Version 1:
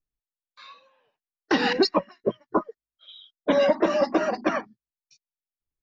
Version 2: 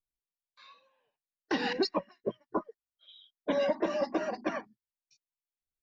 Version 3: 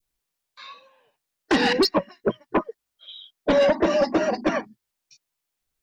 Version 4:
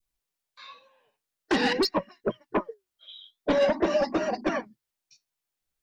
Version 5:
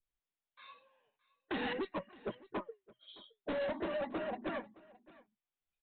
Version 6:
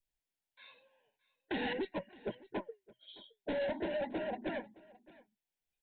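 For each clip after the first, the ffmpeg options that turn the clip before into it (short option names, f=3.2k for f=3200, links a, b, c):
-af "bandreject=f=1.3k:w=7.9,volume=-8.5dB"
-af "adynamicequalizer=threshold=0.00501:dfrequency=1200:dqfactor=0.83:tfrequency=1200:tqfactor=0.83:attack=5:release=100:ratio=0.375:range=2.5:mode=cutabove:tftype=bell,aeval=exprs='0.126*sin(PI/2*1.78*val(0)/0.126)':c=same,volume=4.5dB"
-af "flanger=delay=0.8:depth=8.7:regen=75:speed=0.48:shape=sinusoidal"
-af "aresample=8000,asoftclip=type=tanh:threshold=-25dB,aresample=44100,aecho=1:1:617:0.0841,volume=-8dB"
-af "asuperstop=centerf=1200:order=4:qfactor=2.6,volume=1dB"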